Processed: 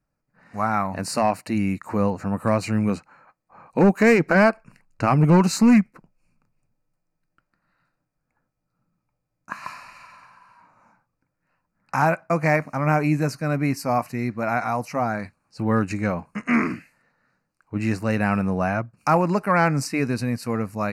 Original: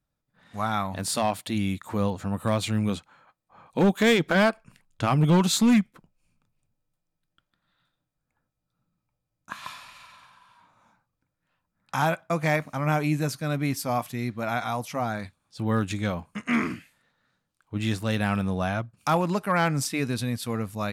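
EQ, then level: Butterworth band-stop 3.4 kHz, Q 2.2; peaking EQ 76 Hz -6.5 dB 1.1 oct; treble shelf 6 kHz -11 dB; +5.0 dB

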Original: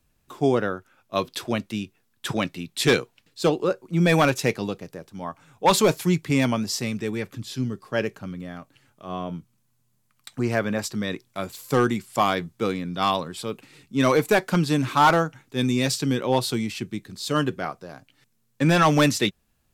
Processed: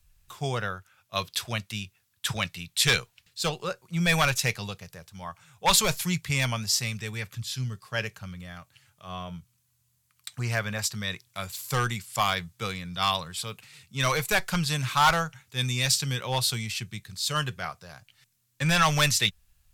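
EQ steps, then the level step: amplifier tone stack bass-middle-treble 10-0-10; bass shelf 310 Hz +10 dB; +4.5 dB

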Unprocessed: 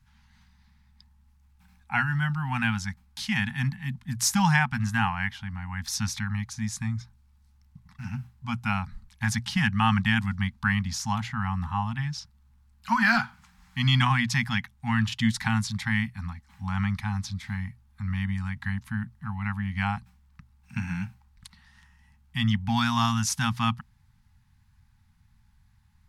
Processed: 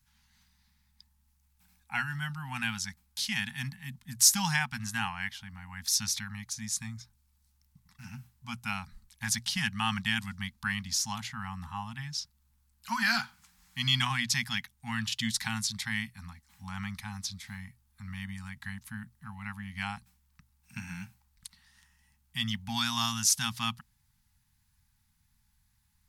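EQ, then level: pre-emphasis filter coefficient 0.8; peaking EQ 100 Hz -3.5 dB 0.45 oct; dynamic bell 4.1 kHz, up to +4 dB, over -48 dBFS, Q 1; +4.0 dB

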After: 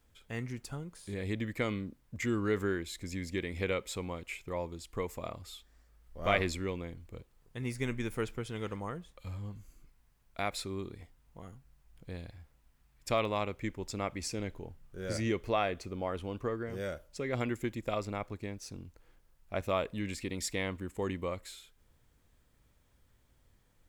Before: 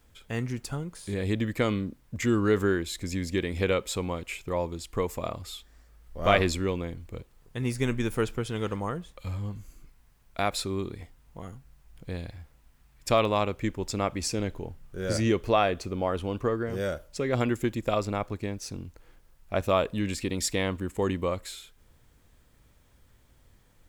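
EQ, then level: dynamic bell 2.1 kHz, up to +6 dB, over -51 dBFS, Q 4.4; -7.5 dB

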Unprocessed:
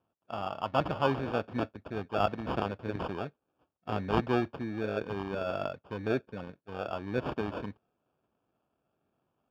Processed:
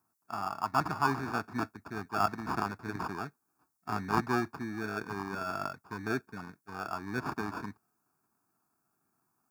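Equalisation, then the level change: high-pass 95 Hz; tone controls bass -6 dB, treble +12 dB; static phaser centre 1.3 kHz, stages 4; +4.5 dB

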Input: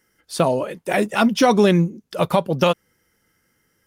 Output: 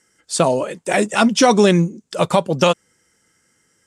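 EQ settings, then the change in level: resonant low-pass 7.8 kHz, resonance Q 4.2; bass shelf 60 Hz -11 dB; +2.5 dB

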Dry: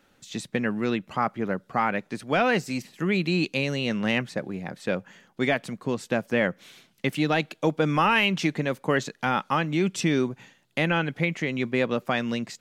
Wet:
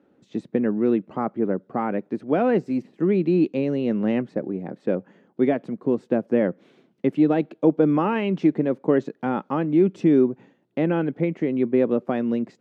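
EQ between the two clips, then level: band-pass filter 330 Hz, Q 1.5; +8.5 dB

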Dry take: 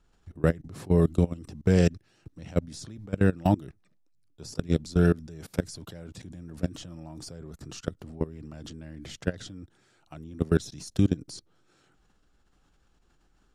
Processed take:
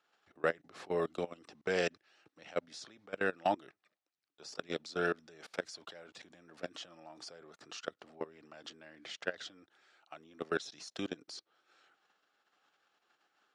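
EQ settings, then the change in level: high-pass 690 Hz 12 dB/octave; low-pass 4.3 kHz 12 dB/octave; band-stop 970 Hz, Q 12; +1.0 dB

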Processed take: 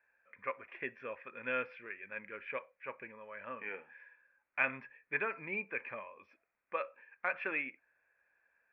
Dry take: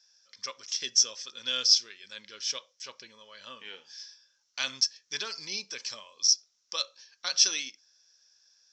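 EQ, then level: rippled Chebyshev low-pass 2.5 kHz, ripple 3 dB; +6.0 dB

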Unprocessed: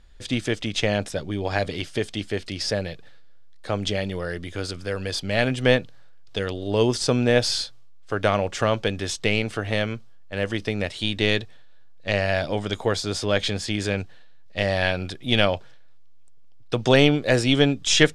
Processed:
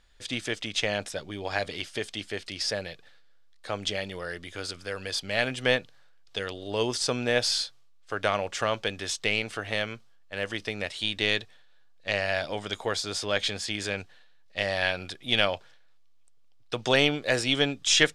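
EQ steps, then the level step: bass shelf 470 Hz -11 dB; -1.5 dB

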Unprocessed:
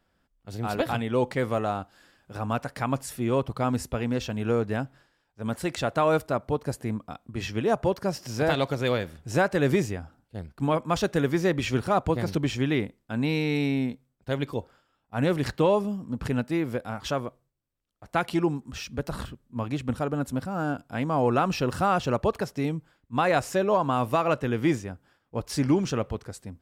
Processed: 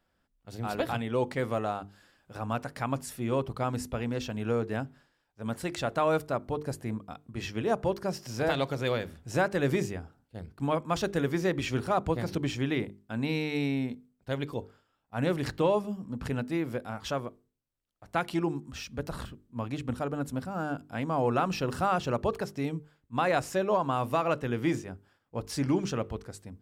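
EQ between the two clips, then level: hum notches 50/100/150/200/250/300/350/400/450 Hz; -3.5 dB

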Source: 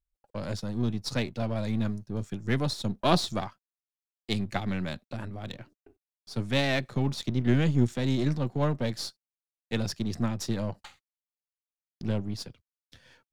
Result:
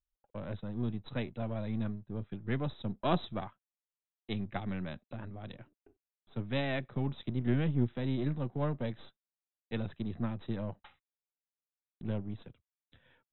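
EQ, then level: brick-wall FIR low-pass 4 kHz; treble shelf 3 kHz -7.5 dB; -6.0 dB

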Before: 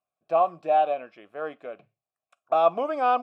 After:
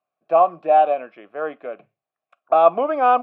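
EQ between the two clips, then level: three-band isolator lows -12 dB, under 160 Hz, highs -20 dB, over 3.1 kHz; +6.5 dB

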